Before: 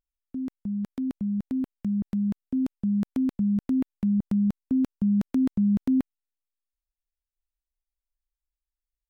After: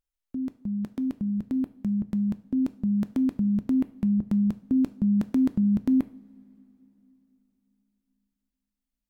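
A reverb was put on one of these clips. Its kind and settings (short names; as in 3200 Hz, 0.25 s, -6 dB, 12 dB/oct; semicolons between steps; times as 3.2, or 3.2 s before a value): two-slope reverb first 0.43 s, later 3.7 s, from -20 dB, DRR 12.5 dB; gain +1 dB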